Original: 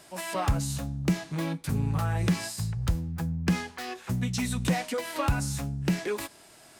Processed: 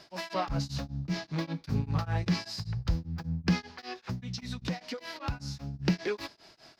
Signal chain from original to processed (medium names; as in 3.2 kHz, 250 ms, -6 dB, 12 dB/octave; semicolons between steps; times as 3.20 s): resonant high shelf 6.6 kHz -11.5 dB, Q 3; 3.59–5.74 s: compression 2:1, threshold -35 dBFS, peak gain reduction 8.5 dB; peaking EQ 3.3 kHz -2.5 dB; tremolo of two beating tones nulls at 5.1 Hz